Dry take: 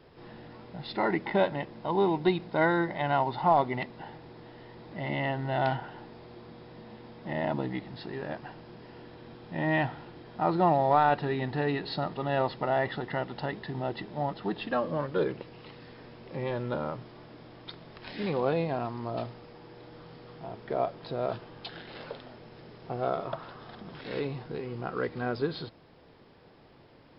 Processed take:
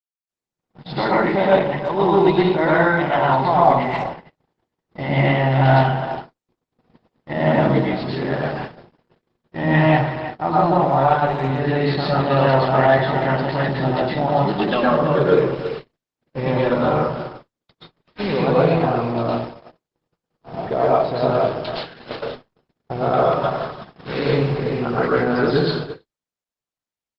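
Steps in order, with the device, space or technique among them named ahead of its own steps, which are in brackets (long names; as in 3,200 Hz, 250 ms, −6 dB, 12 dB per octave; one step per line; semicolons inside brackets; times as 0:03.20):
speakerphone in a meeting room (convolution reverb RT60 0.50 s, pre-delay 107 ms, DRR −5.5 dB; far-end echo of a speakerphone 330 ms, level −11 dB; automatic gain control gain up to 10 dB; noise gate −26 dBFS, range −60 dB; level −1 dB; Opus 12 kbit/s 48,000 Hz)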